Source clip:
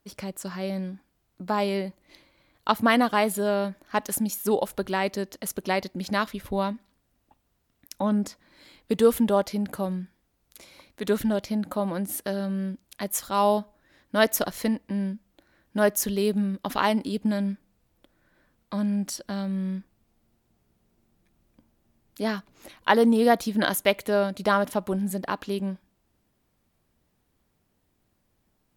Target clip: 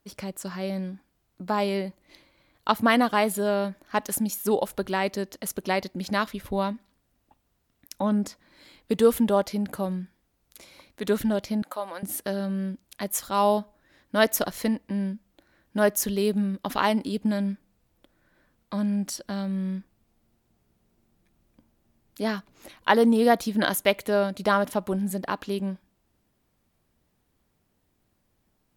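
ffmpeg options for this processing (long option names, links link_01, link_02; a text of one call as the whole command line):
ffmpeg -i in.wav -filter_complex "[0:a]asettb=1/sr,asplit=3[link_01][link_02][link_03];[link_01]atrim=end=11.624[link_04];[link_02]atrim=start=11.62:end=12.03,asetpts=PTS-STARTPTS,afade=type=in:duration=0.004:curve=qsin,afade=type=out:start_time=0.406:duration=0.004:curve=qsin,highpass=680[link_05];[link_03]atrim=start=12.026[link_06];[link_04][link_05]acrossfade=duration=0.004:curve1=hsin:curve2=qsin[link_07];[link_07][link_06]acrossfade=duration=0.004:curve1=qsin:curve2=hsin" out.wav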